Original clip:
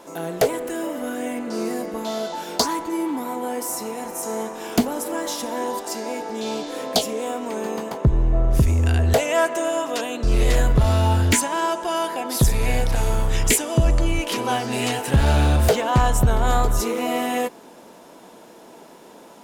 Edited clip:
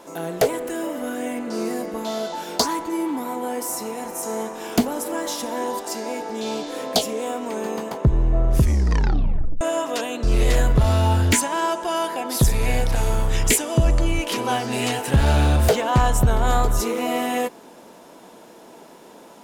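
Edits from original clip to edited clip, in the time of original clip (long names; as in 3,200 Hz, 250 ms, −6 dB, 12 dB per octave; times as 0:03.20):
0:08.60: tape stop 1.01 s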